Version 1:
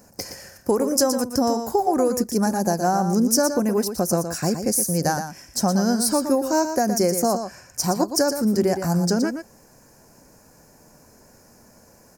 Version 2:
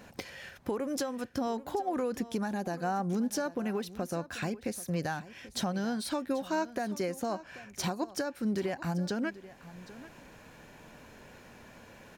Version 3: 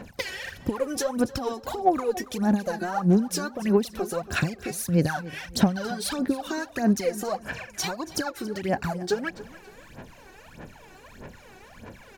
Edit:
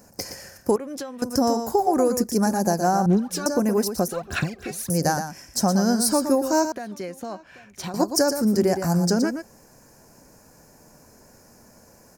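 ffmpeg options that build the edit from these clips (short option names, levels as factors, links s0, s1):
-filter_complex "[1:a]asplit=2[s0][s1];[2:a]asplit=2[s2][s3];[0:a]asplit=5[s4][s5][s6][s7][s8];[s4]atrim=end=0.762[s9];[s0]atrim=start=0.758:end=1.222[s10];[s5]atrim=start=1.218:end=3.062[s11];[s2]atrim=start=3.058:end=3.462[s12];[s6]atrim=start=3.458:end=4.082[s13];[s3]atrim=start=4.078:end=4.902[s14];[s7]atrim=start=4.898:end=6.722[s15];[s1]atrim=start=6.718:end=7.942[s16];[s8]atrim=start=7.938[s17];[s9][s10]acrossfade=d=0.004:c1=hsin:c2=hsin[s18];[s18][s11]acrossfade=d=0.004:c1=hsin:c2=hsin[s19];[s19][s12]acrossfade=d=0.004:c1=hsin:c2=hsin[s20];[s20][s13]acrossfade=d=0.004:c1=hsin:c2=hsin[s21];[s21][s14]acrossfade=d=0.004:c1=hsin:c2=hsin[s22];[s22][s15]acrossfade=d=0.004:c1=hsin:c2=hsin[s23];[s23][s16]acrossfade=d=0.004:c1=hsin:c2=hsin[s24];[s24][s17]acrossfade=d=0.004:c1=hsin:c2=hsin"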